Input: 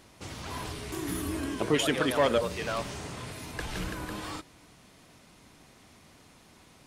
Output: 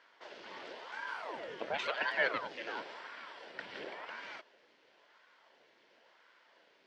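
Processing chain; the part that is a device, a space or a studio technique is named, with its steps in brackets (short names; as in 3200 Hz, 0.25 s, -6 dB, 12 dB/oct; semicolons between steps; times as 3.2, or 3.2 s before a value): voice changer toy (ring modulator with a swept carrier 700 Hz, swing 85%, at 0.95 Hz; speaker cabinet 560–4000 Hz, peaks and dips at 780 Hz -8 dB, 1200 Hz -10 dB, 2500 Hz -5 dB, 3800 Hz -6 dB); 2.79–4.09 notch 6500 Hz, Q 7.3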